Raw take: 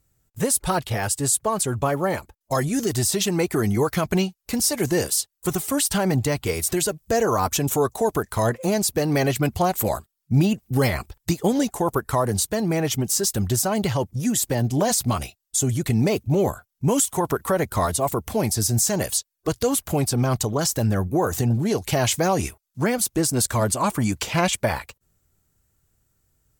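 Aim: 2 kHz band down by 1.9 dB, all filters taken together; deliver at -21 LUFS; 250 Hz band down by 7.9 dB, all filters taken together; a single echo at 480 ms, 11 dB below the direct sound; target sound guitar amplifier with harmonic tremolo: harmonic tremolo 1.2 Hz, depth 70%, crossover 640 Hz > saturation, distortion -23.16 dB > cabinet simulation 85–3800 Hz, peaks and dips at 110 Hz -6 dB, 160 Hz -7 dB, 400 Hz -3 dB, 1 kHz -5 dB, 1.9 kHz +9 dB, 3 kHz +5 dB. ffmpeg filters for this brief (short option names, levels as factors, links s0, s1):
-filter_complex "[0:a]equalizer=f=250:t=o:g=-8,equalizer=f=2000:t=o:g=-8.5,aecho=1:1:480:0.282,acrossover=split=640[s0][s1];[s0]aeval=exprs='val(0)*(1-0.7/2+0.7/2*cos(2*PI*1.2*n/s))':c=same[s2];[s1]aeval=exprs='val(0)*(1-0.7/2-0.7/2*cos(2*PI*1.2*n/s))':c=same[s3];[s2][s3]amix=inputs=2:normalize=0,asoftclip=threshold=0.188,highpass=85,equalizer=f=110:t=q:w=4:g=-6,equalizer=f=160:t=q:w=4:g=-7,equalizer=f=400:t=q:w=4:g=-3,equalizer=f=1000:t=q:w=4:g=-5,equalizer=f=1900:t=q:w=4:g=9,equalizer=f=3000:t=q:w=4:g=5,lowpass=f=3800:w=0.5412,lowpass=f=3800:w=1.3066,volume=3.76"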